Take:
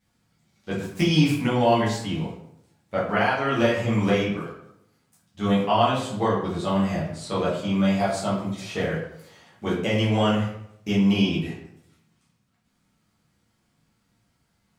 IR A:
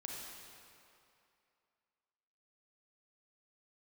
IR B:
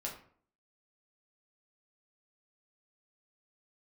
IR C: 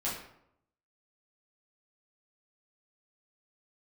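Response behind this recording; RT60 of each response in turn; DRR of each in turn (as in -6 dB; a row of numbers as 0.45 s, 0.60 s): C; 2.6 s, 0.50 s, 0.75 s; -2.0 dB, -2.5 dB, -8.0 dB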